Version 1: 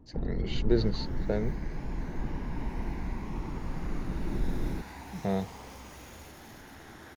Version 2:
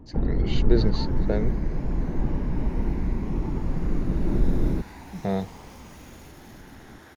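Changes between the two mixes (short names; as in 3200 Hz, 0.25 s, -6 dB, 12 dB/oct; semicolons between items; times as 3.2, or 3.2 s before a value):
speech +3.5 dB; first sound +9.0 dB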